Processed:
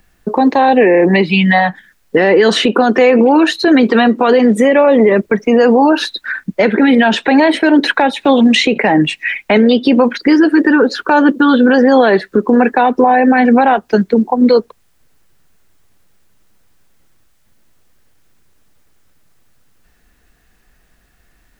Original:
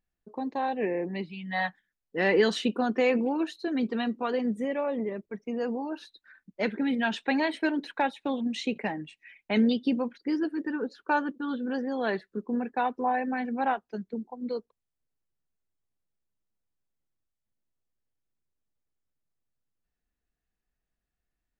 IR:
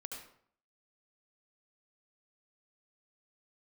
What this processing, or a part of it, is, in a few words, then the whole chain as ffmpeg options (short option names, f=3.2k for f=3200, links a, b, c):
mastering chain: -filter_complex "[0:a]equalizer=f=1.6k:t=o:w=1.1:g=3.5,acrossover=split=320|830|2400[a][b][c][d];[a]acompressor=threshold=-42dB:ratio=4[e];[b]acompressor=threshold=-29dB:ratio=4[f];[c]acompressor=threshold=-41dB:ratio=4[g];[d]acompressor=threshold=-48dB:ratio=4[h];[e][f][g][h]amix=inputs=4:normalize=0,acompressor=threshold=-34dB:ratio=3,alimiter=level_in=31.5dB:limit=-1dB:release=50:level=0:latency=1,volume=-1dB"